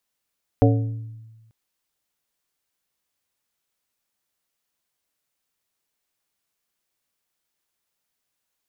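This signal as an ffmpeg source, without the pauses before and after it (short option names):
-f lavfi -i "aevalsrc='0.224*pow(10,-3*t/1.32)*sin(2*PI*112*t)+0.178*pow(10,-3*t/0.695)*sin(2*PI*280*t)+0.141*pow(10,-3*t/0.5)*sin(2*PI*448*t)+0.112*pow(10,-3*t/0.428)*sin(2*PI*560*t)+0.0891*pow(10,-3*t/0.356)*sin(2*PI*728*t)':d=0.89:s=44100"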